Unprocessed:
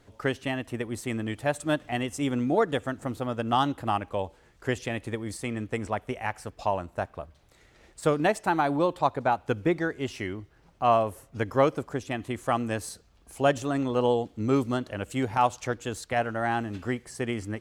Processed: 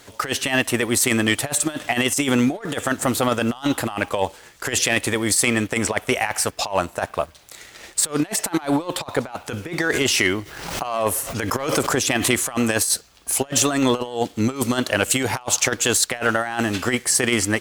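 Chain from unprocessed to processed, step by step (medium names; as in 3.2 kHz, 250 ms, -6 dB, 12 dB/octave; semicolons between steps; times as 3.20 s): tilt EQ +3 dB/octave; compressor with a negative ratio -33 dBFS, ratio -0.5; waveshaping leveller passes 1; 9.81–12.43 s: swell ahead of each attack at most 47 dB/s; trim +9 dB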